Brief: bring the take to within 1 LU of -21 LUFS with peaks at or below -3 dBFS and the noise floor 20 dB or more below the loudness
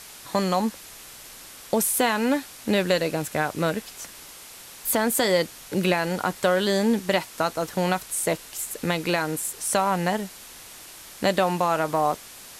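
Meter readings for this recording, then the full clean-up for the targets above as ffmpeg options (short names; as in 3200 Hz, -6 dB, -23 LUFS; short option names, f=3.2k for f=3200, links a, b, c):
noise floor -44 dBFS; noise floor target -45 dBFS; loudness -24.5 LUFS; peak -8.0 dBFS; loudness target -21.0 LUFS
-> -af "afftdn=nr=6:nf=-44"
-af "volume=3.5dB"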